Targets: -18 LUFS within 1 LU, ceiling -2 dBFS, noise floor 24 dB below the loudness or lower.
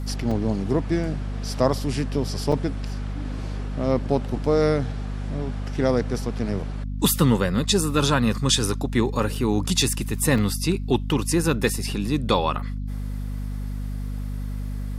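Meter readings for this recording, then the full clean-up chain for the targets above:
dropouts 4; longest dropout 3.7 ms; hum 50 Hz; harmonics up to 250 Hz; hum level -26 dBFS; loudness -24.5 LUFS; peak -5.5 dBFS; loudness target -18.0 LUFS
-> interpolate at 0.31/2.52/9.35/10.38, 3.7 ms; de-hum 50 Hz, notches 5; gain +6.5 dB; limiter -2 dBFS

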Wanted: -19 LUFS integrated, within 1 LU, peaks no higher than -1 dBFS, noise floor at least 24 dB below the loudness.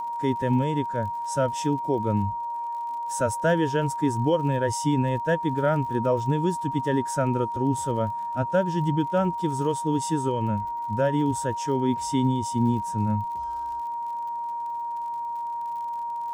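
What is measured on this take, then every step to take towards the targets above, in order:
ticks 54/s; steady tone 940 Hz; tone level -28 dBFS; loudness -26.0 LUFS; peak -10.5 dBFS; loudness target -19.0 LUFS
-> de-click; notch 940 Hz, Q 30; gain +7 dB

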